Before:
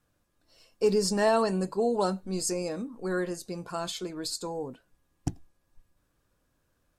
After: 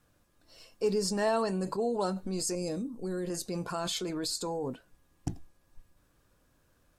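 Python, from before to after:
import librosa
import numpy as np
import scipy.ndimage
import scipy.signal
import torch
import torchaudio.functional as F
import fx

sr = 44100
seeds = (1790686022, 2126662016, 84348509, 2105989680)

p1 = fx.peak_eq(x, sr, hz=1300.0, db=-14.0, octaves=2.5, at=(2.55, 3.3))
p2 = fx.over_compress(p1, sr, threshold_db=-38.0, ratio=-1.0)
p3 = p1 + (p2 * 10.0 ** (-0.5 / 20.0))
y = p3 * 10.0 ** (-5.0 / 20.0)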